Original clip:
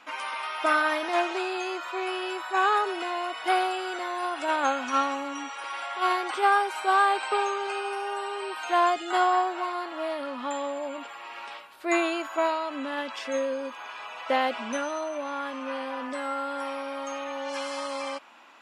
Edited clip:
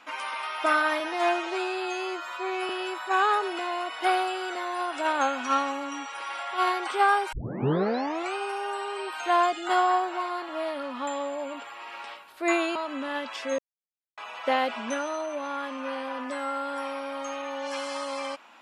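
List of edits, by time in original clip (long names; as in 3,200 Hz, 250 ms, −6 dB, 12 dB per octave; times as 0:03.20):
0:01.00–0:02.13: time-stretch 1.5×
0:06.76: tape start 1.03 s
0:12.19–0:12.58: remove
0:13.41–0:14.00: silence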